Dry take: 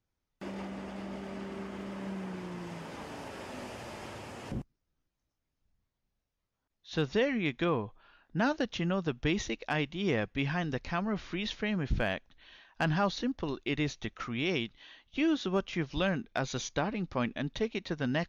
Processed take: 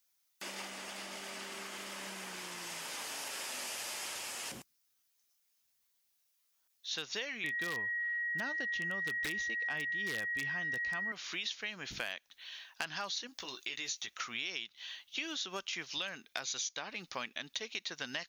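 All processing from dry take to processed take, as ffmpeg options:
-filter_complex "[0:a]asettb=1/sr,asplit=3[a][b][c];[a]atrim=end=7.444[d];[b]atrim=start=7.44:end=11.12,asetpts=PTS-STARTPTS,afade=t=in:d=0.004:c=qsin,afade=t=out:st=3.676:d=0.004:c=qsin,aemphasis=mode=reproduction:type=riaa,aeval=exprs='val(0)+0.0355*sin(2*PI*1900*n/s)':c=same,aeval=exprs='0.188*(abs(mod(val(0)/0.188+3,4)-2)-1)':c=same[e];[c]atrim=start=11.116[f];[d][e]acrossfade=d=0.004:c1=hsin:c2=qsin[g];[g][f]acrossfade=d=0.004:c1=qsin:c2=hsin,asettb=1/sr,asplit=3[h][i][j];[h]atrim=end=13.274[k];[i]atrim=start=13.27:end=14.08,asetpts=PTS-STARTPTS,afade=t=in:d=0.004:c=qsin,afade=t=out:st=0.806:d=0.004:c=qsin,highshelf=f=6.1k:g=8,acompressor=threshold=-41dB:ratio=2:attack=3.2:release=140:knee=1:detection=peak,asplit=2[l][m];[m]adelay=16,volume=-6.5dB[n];[l][n]amix=inputs=2:normalize=0,atrim=end_sample=35721[o];[j]atrim=start=14.076[p];[k][o]acrossfade=d=0.004:c1=hsin:c2=qsin[q];[q][p]acrossfade=d=0.004:c1=qsin:c2=hsin,aderivative,acompressor=threshold=-52dB:ratio=5,volume=16dB"

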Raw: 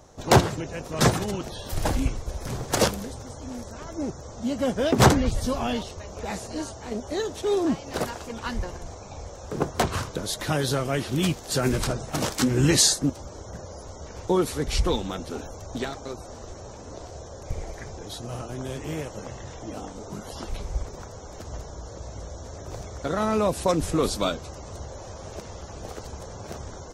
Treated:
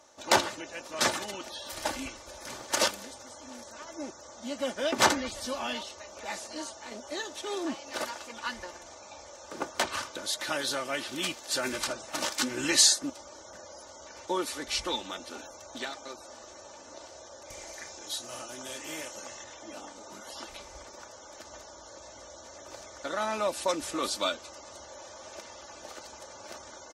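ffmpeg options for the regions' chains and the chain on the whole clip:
-filter_complex "[0:a]asettb=1/sr,asplit=3[a][b][c];[a]atrim=end=17.504[d];[b]atrim=start=17.5:end=19.44,asetpts=PTS-STARTPTS,afade=t=in:d=0.004:c=qsin,afade=t=out:st=1.936:d=0.004:c=qsin,aemphasis=mode=production:type=cd,asplit=2[e][f];[f]adelay=32,volume=-11.5dB[g];[e][g]amix=inputs=2:normalize=0,atrim=end_sample=85554[h];[c]atrim=start=19.436[i];[d][h]acrossfade=d=0.004:c1=hsin:c2=qsin[j];[j][i]acrossfade=d=0.004:c1=qsin:c2=hsin,highpass=f=1.3k:p=1,highshelf=f=11k:g=-11,aecho=1:1:3.4:0.55"

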